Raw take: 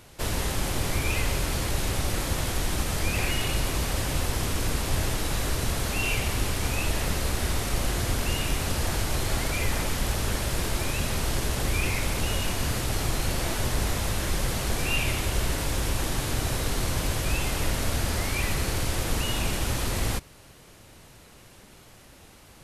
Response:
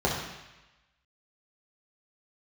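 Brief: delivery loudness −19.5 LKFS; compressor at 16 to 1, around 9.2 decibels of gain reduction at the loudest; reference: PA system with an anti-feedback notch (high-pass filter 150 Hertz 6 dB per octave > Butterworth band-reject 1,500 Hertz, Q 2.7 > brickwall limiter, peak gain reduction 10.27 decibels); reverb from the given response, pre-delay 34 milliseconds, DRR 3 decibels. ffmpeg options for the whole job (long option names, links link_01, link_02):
-filter_complex "[0:a]acompressor=threshold=-30dB:ratio=16,asplit=2[link_01][link_02];[1:a]atrim=start_sample=2205,adelay=34[link_03];[link_02][link_03]afir=irnorm=-1:irlink=0,volume=-16.5dB[link_04];[link_01][link_04]amix=inputs=2:normalize=0,highpass=frequency=150:poles=1,asuperstop=centerf=1500:order=8:qfactor=2.7,volume=22dB,alimiter=limit=-10.5dB:level=0:latency=1"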